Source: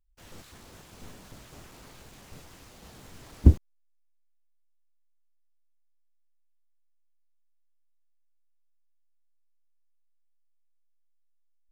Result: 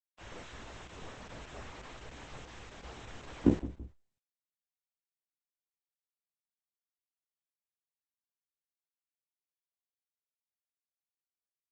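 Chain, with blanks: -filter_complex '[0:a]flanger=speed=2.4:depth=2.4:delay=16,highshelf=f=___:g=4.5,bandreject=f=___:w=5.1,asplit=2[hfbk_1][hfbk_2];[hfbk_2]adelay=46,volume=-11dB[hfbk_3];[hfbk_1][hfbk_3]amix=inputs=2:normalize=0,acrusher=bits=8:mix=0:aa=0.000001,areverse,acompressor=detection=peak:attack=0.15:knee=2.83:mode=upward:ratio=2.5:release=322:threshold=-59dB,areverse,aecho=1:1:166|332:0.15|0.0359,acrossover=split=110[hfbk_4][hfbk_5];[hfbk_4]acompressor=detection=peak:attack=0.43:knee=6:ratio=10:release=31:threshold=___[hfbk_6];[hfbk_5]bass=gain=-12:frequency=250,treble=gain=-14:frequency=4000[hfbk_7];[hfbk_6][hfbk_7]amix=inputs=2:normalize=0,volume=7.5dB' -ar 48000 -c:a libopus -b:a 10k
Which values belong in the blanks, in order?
3900, 4600, -48dB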